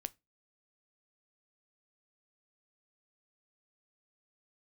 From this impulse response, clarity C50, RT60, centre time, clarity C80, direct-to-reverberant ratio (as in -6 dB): 27.0 dB, 0.20 s, 2 ms, 35.5 dB, 14.5 dB